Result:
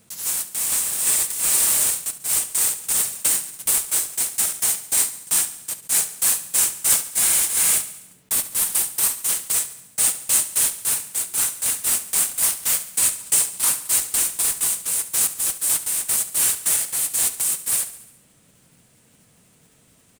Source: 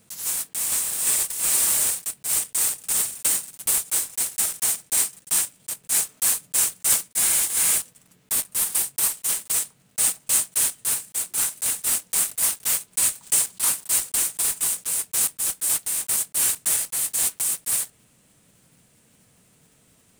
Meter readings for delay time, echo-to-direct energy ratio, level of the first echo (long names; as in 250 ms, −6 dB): 70 ms, −13.0 dB, −14.5 dB